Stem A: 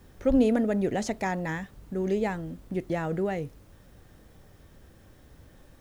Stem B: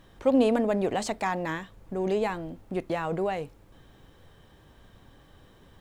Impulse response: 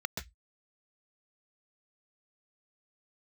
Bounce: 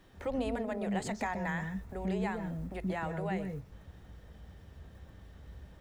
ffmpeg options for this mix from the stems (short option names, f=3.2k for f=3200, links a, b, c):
-filter_complex "[0:a]acompressor=threshold=-31dB:ratio=6,volume=-1.5dB,asplit=2[a][b];[b]volume=-5.5dB[c];[1:a]volume=-1,volume=-7.5dB,asplit=2[d][e];[e]apad=whole_len=256074[f];[a][f]sidechaingate=range=-33dB:threshold=-58dB:ratio=16:detection=peak[g];[2:a]atrim=start_sample=2205[h];[c][h]afir=irnorm=-1:irlink=0[i];[g][d][i]amix=inputs=3:normalize=0,acrossover=split=240[j][k];[k]acompressor=threshold=-37dB:ratio=1.5[l];[j][l]amix=inputs=2:normalize=0"